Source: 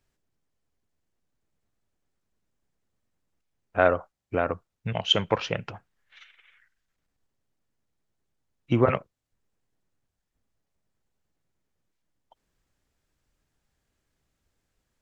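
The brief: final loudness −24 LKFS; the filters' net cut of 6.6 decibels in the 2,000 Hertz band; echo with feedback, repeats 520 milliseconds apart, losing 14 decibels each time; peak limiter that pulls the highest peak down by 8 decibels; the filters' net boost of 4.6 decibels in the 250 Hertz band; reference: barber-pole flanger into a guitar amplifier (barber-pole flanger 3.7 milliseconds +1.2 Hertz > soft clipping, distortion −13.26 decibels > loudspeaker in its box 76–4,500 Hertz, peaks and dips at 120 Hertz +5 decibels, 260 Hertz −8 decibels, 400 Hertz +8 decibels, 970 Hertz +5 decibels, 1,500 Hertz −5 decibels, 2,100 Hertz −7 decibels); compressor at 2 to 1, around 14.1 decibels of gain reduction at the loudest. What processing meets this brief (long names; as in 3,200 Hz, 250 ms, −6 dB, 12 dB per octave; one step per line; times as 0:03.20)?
parametric band 250 Hz +8 dB
parametric band 2,000 Hz −3 dB
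downward compressor 2 to 1, threshold −39 dBFS
brickwall limiter −24 dBFS
repeating echo 520 ms, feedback 20%, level −14 dB
barber-pole flanger 3.7 ms +1.2 Hz
soft clipping −33.5 dBFS
loudspeaker in its box 76–4,500 Hz, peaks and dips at 120 Hz +5 dB, 260 Hz −8 dB, 400 Hz +8 dB, 970 Hz +5 dB, 1,500 Hz −5 dB, 2,100 Hz −7 dB
level +21 dB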